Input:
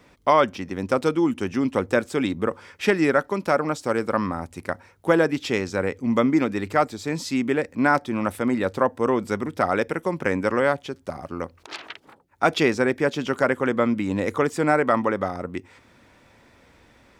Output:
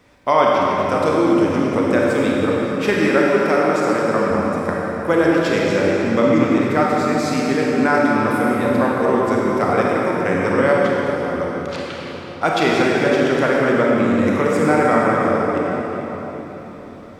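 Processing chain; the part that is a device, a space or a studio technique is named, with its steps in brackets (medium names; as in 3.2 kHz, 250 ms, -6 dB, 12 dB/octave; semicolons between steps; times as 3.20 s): cathedral (reverberation RT60 4.4 s, pre-delay 27 ms, DRR -4.5 dB); 3.14–4.31 s: high-pass 140 Hz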